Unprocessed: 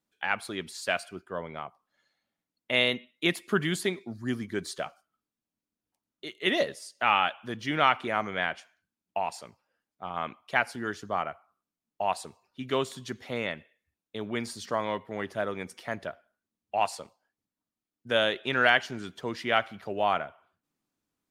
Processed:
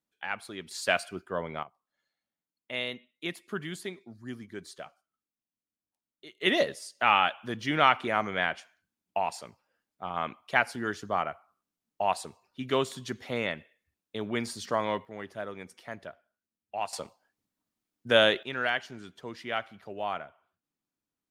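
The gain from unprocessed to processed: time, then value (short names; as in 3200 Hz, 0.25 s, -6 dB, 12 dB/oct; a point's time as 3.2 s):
-5.5 dB
from 0.71 s +2.5 dB
from 1.63 s -9 dB
from 6.41 s +1 dB
from 15.05 s -6.5 dB
from 16.93 s +4 dB
from 18.43 s -7 dB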